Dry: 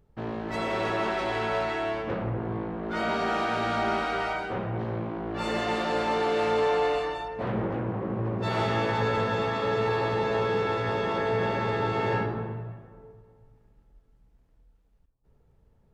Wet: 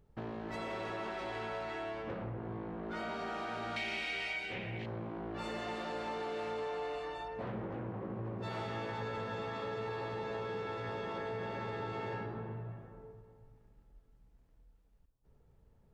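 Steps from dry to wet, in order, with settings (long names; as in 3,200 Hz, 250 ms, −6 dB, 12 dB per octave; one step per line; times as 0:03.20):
0:03.76–0:04.86: high shelf with overshoot 1,700 Hz +10.5 dB, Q 3
downward compressor 3 to 1, threshold −37 dBFS, peak gain reduction 13 dB
level −3 dB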